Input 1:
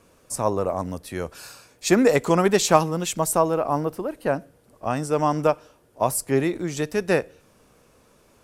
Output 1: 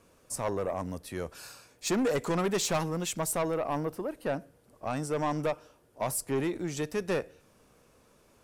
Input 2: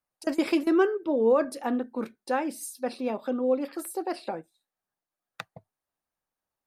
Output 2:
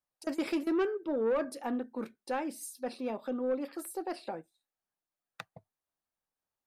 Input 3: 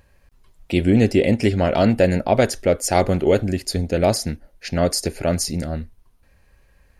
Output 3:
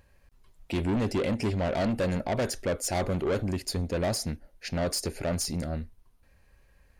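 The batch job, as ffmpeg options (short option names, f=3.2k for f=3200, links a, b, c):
-af "asoftclip=type=tanh:threshold=-18.5dB,volume=-5dB"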